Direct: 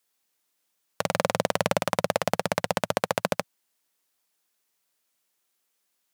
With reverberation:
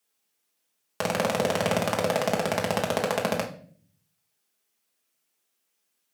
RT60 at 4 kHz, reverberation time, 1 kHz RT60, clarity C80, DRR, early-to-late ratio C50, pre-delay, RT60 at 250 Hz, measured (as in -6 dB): 0.40 s, 0.50 s, 0.40 s, 15.0 dB, -1.5 dB, 10.0 dB, 3 ms, 0.85 s